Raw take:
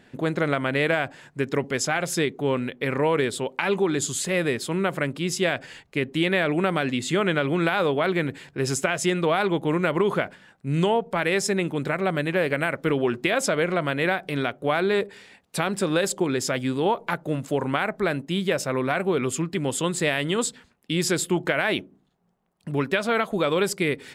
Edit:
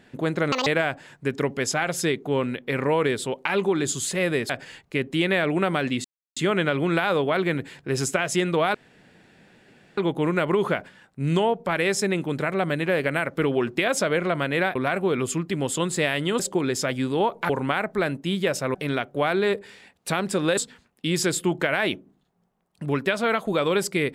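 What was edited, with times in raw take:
0.52–0.80 s: speed 194%
4.63–5.51 s: delete
7.06 s: insert silence 0.32 s
9.44 s: insert room tone 1.23 s
14.22–16.05 s: swap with 18.79–20.43 s
17.15–17.54 s: delete

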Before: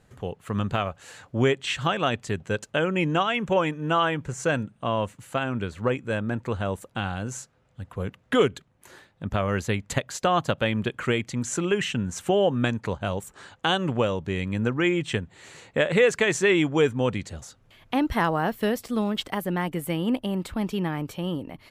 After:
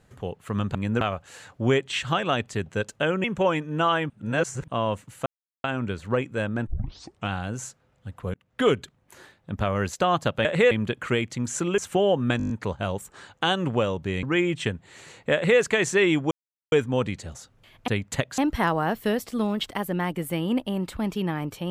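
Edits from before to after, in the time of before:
2.98–3.35 s: delete
4.21–4.79 s: reverse
5.37 s: insert silence 0.38 s
6.40 s: tape start 0.63 s
8.07–8.42 s: fade in
9.66–10.16 s: move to 17.95 s
11.75–12.12 s: delete
12.72 s: stutter 0.02 s, 7 plays
14.45–14.71 s: move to 0.75 s
15.82–16.08 s: copy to 10.68 s
16.79 s: insert silence 0.41 s

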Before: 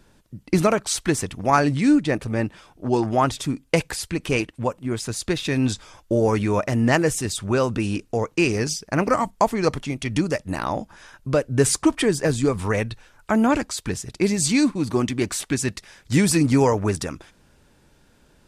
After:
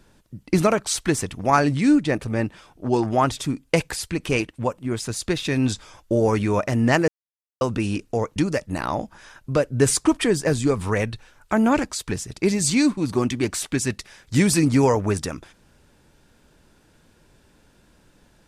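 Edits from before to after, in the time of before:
7.08–7.61 s: mute
8.36–10.14 s: delete

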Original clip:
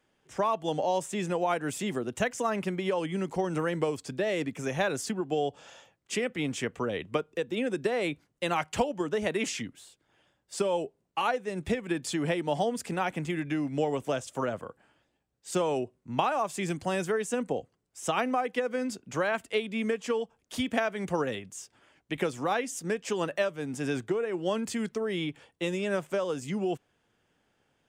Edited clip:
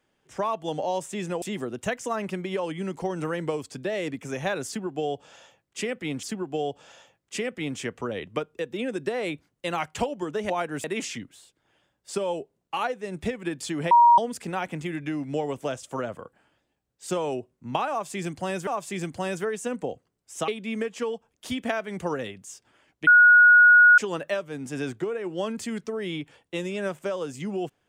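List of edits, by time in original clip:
1.42–1.76 s: move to 9.28 s
5.01–6.57 s: loop, 2 plays
12.35–12.62 s: bleep 948 Hz -11.5 dBFS
16.34–17.11 s: loop, 2 plays
18.15–19.56 s: delete
22.15–23.06 s: bleep 1.45 kHz -10.5 dBFS

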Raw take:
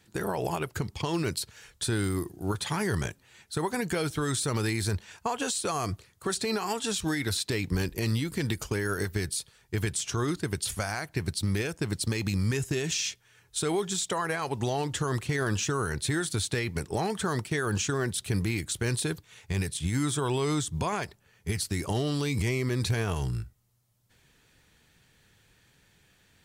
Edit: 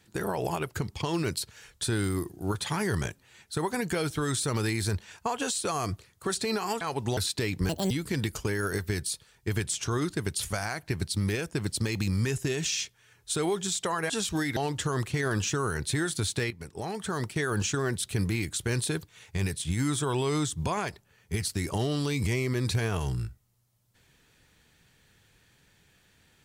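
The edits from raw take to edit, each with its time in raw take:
6.81–7.28 s: swap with 14.36–14.72 s
7.80–8.17 s: speed 171%
16.66–17.56 s: fade in, from -13.5 dB

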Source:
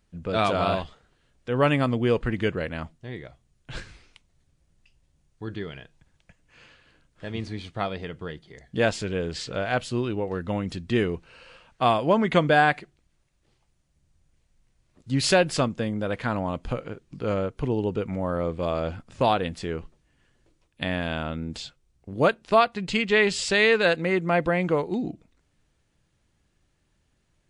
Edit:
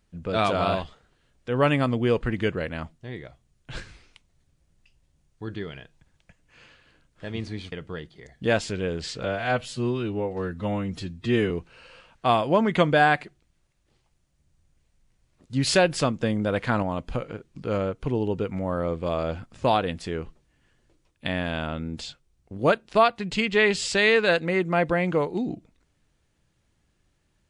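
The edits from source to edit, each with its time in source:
7.72–8.04 s: delete
9.56–11.07 s: stretch 1.5×
15.76–16.39 s: gain +3 dB

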